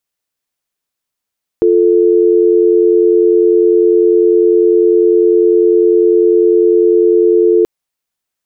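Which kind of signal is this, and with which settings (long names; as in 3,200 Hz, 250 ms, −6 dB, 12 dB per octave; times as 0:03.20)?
call progress tone dial tone, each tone −9 dBFS 6.03 s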